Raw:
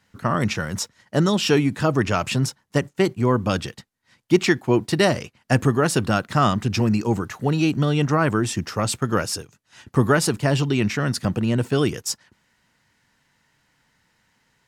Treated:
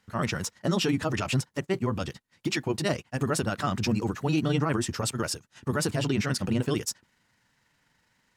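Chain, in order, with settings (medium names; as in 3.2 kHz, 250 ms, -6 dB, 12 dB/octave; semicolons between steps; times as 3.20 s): peak limiter -13.5 dBFS, peak gain reduction 10 dB; granular stretch 0.57×, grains 82 ms; trim -2.5 dB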